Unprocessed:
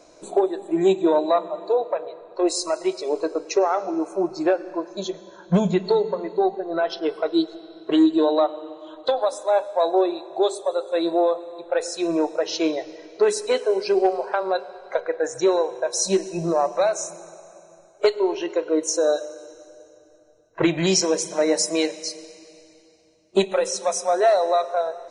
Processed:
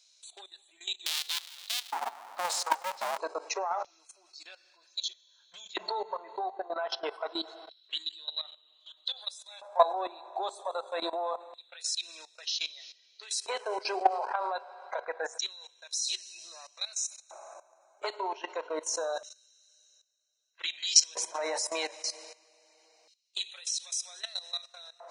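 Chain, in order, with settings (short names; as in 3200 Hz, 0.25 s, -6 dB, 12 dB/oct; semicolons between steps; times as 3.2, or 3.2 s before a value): 1.06–3.18 cycle switcher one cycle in 2, inverted; LFO high-pass square 0.26 Hz 890–3600 Hz; level quantiser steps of 16 dB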